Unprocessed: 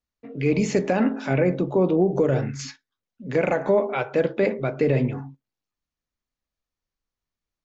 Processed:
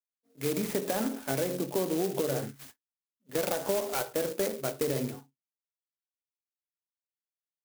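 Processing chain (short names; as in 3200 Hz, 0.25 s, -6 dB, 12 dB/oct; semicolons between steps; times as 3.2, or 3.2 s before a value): HPF 300 Hz 6 dB/oct; notches 60/120/180/240/300/360/420/480/540 Hz; expander -28 dBFS; high shelf 4500 Hz +9 dB; compressor, threshold -22 dBFS, peak gain reduction 6 dB; air absorption 110 m; clock jitter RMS 0.1 ms; gain -3 dB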